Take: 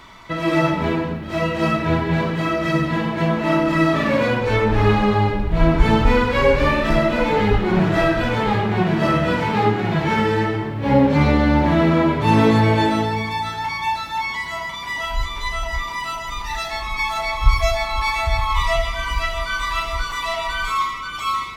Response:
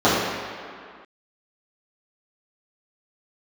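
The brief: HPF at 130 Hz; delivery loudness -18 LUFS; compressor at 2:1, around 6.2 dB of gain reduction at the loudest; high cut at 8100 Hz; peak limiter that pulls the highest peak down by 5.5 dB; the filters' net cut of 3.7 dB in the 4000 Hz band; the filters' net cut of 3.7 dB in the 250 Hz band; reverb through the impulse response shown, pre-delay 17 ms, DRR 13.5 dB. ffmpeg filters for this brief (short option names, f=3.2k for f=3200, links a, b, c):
-filter_complex "[0:a]highpass=130,lowpass=8.1k,equalizer=f=250:t=o:g=-4.5,equalizer=f=4k:t=o:g=-4.5,acompressor=threshold=-24dB:ratio=2,alimiter=limit=-16.5dB:level=0:latency=1,asplit=2[a][b];[1:a]atrim=start_sample=2205,adelay=17[c];[b][c]afir=irnorm=-1:irlink=0,volume=-38.5dB[d];[a][d]amix=inputs=2:normalize=0,volume=8dB"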